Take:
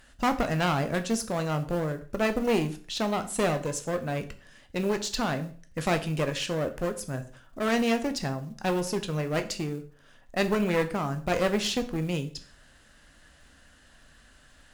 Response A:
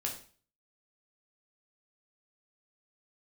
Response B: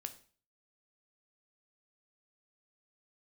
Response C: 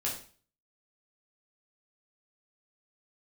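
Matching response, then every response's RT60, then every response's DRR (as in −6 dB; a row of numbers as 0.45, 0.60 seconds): B; 0.40, 0.40, 0.40 seconds; −0.5, 8.0, −4.5 decibels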